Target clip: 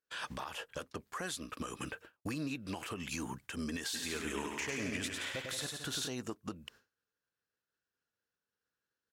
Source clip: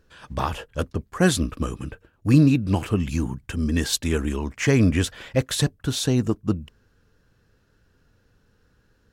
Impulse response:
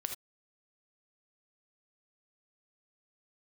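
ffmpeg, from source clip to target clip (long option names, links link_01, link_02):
-filter_complex "[0:a]highpass=frequency=1000:poles=1,agate=range=-33dB:threshold=-54dB:ratio=3:detection=peak,acompressor=threshold=-42dB:ratio=8,alimiter=level_in=12dB:limit=-24dB:level=0:latency=1:release=67,volume=-12dB,asplit=3[link_01][link_02][link_03];[link_01]afade=type=out:start_time=3.93:duration=0.02[link_04];[link_02]aecho=1:1:100|175|231.2|273.4|305.1:0.631|0.398|0.251|0.158|0.1,afade=type=in:start_time=3.93:duration=0.02,afade=type=out:start_time=6.07:duration=0.02[link_05];[link_03]afade=type=in:start_time=6.07:duration=0.02[link_06];[link_04][link_05][link_06]amix=inputs=3:normalize=0,volume=7.5dB"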